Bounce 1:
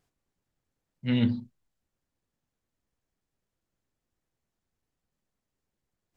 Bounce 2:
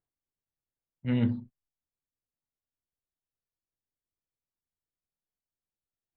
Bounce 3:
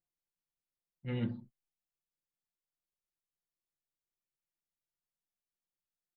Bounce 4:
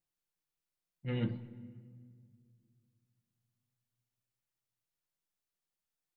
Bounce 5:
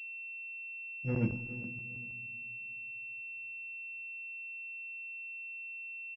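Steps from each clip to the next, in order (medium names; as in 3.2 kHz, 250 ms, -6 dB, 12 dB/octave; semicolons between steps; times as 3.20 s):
low-pass 1.8 kHz 12 dB/octave; gate -43 dBFS, range -15 dB; peaking EQ 210 Hz -3 dB
comb 5.7 ms, depth 79%; trim -7.5 dB
simulated room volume 3300 m³, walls mixed, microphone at 0.55 m; trim +1.5 dB
feedback delay 407 ms, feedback 26%, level -18 dB; crackling interface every 0.16 s, samples 512, zero, from 0.83 s; class-D stage that switches slowly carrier 2.7 kHz; trim +3 dB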